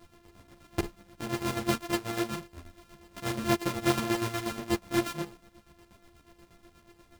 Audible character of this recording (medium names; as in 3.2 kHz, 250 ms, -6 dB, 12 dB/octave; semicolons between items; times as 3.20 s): a buzz of ramps at a fixed pitch in blocks of 128 samples; chopped level 8.3 Hz, depth 60%, duty 45%; a shimmering, thickened sound